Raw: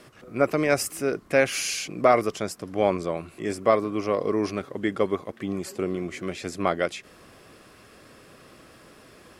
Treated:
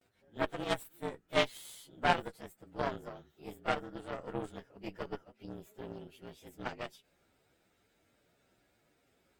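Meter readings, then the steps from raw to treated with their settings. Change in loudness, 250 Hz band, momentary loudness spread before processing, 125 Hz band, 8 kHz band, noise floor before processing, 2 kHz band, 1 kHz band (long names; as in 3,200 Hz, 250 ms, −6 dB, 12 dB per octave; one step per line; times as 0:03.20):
−11.5 dB, −14.5 dB, 10 LU, −11.0 dB, −19.5 dB, −52 dBFS, −9.0 dB, −9.0 dB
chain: partials spread apart or drawn together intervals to 115%
noise gate with hold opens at −50 dBFS
harmonic generator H 3 −14 dB, 4 −17 dB, 7 −31 dB, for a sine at −7.5 dBFS
level −4 dB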